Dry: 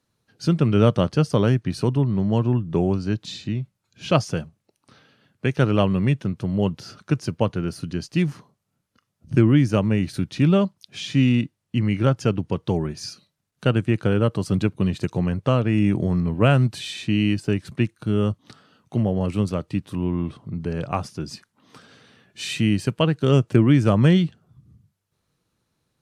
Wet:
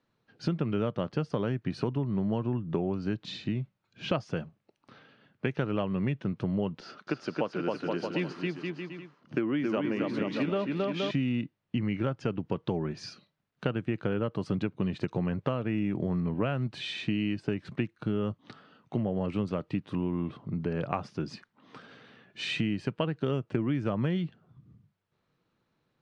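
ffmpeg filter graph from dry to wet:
ffmpeg -i in.wav -filter_complex "[0:a]asettb=1/sr,asplit=3[link_01][link_02][link_03];[link_01]atrim=end=6.804[link_04];[link_02]atrim=start=6.8:end=11.11,asetpts=PTS-STARTPTS,afade=type=in:duration=0.004:curve=qsin,afade=type=out:start_time=4.306:duration=0.004:curve=qsin,highpass=290,lowpass=7600,aecho=1:1:270|472.5|624.4|738.3|823.7:0.631|0.398|0.251|0.158|0.1,atrim=end_sample=190071[link_05];[link_03]atrim=start=11.106[link_06];[link_04][link_05]acrossfade=duration=0.004:curve1=hsin:curve2=qsin[link_07];[link_07][link_06]acrossfade=duration=0.004:curve1=qsin:curve2=hsin,lowpass=3100,equalizer=frequency=66:width=1:gain=-11,acompressor=threshold=-26dB:ratio=6" out.wav

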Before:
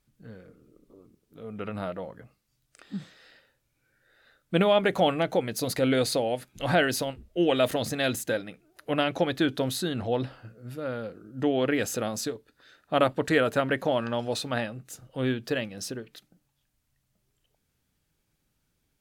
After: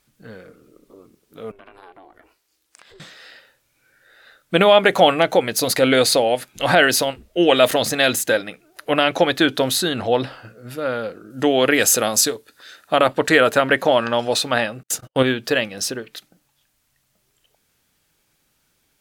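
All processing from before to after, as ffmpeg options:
ffmpeg -i in.wav -filter_complex "[0:a]asettb=1/sr,asplit=3[link_01][link_02][link_03];[link_01]atrim=end=1.514[link_04];[link_02]atrim=start=1.51:end=3,asetpts=PTS-STARTPTS,afade=type=in:duration=0.004:curve=qsin,afade=type=out:start_time=1.486:duration=0.004:curve=qsin,highpass=frequency=240:poles=1,aeval=exprs='val(0)*sin(2*PI*190*n/s)':channel_layout=same,acompressor=threshold=-56dB:ratio=3:attack=3.2:release=140:knee=1:detection=peak[link_05];[link_03]atrim=start=2.996[link_06];[link_04][link_05]acrossfade=duration=0.004:curve1=hsin:curve2=qsin[link_07];[link_07][link_06]acrossfade=duration=0.004:curve1=qsin:curve2=hsin,asettb=1/sr,asplit=3[link_08][link_09][link_10];[link_08]atrim=end=11.304[link_11];[link_09]atrim=start=11.3:end=12.96,asetpts=PTS-STARTPTS,afade=type=in:duration=0.004:curve=qsin,afade=type=out:start_time=1.656:duration=0.004:curve=qsin,highpass=42,equalizer=frequency=11000:width_type=o:width=1.9:gain=8[link_12];[link_10]atrim=start=12.956[link_13];[link_11][link_12]acrossfade=duration=0.004:curve1=hsin:curve2=qsin[link_14];[link_14][link_13]acrossfade=duration=0.004:curve1=qsin:curve2=hsin,asettb=1/sr,asplit=3[link_15][link_16][link_17];[link_15]atrim=end=14.834[link_18];[link_16]atrim=start=14.83:end=15.23,asetpts=PTS-STARTPTS,afade=type=in:duration=0.004:curve=qsin,afade=type=out:start_time=0.396:duration=0.004:curve=qsin,agate=range=-47dB:threshold=-50dB:ratio=16:release=100:detection=peak,acontrast=85[link_19];[link_17]atrim=start=15.226[link_20];[link_18][link_19]acrossfade=duration=0.004:curve1=hsin:curve2=qsin[link_21];[link_21][link_20]acrossfade=duration=0.004:curve1=qsin:curve2=hsin,lowshelf=frequency=300:gain=-12,alimiter=level_in=13.5dB:limit=-1dB:release=50:level=0:latency=1,volume=-1dB" out.wav

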